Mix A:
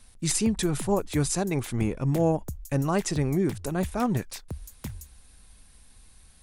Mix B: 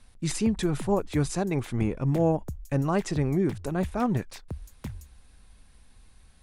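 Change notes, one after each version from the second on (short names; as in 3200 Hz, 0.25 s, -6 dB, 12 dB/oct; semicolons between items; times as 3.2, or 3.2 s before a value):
master: add high shelf 5300 Hz -11.5 dB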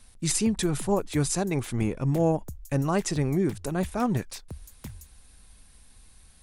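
background -4.0 dB; master: add high shelf 5300 Hz +11.5 dB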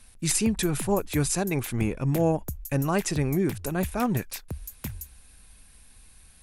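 background +5.0 dB; master: add thirty-one-band EQ 1600 Hz +3 dB, 2500 Hz +5 dB, 12500 Hz +11 dB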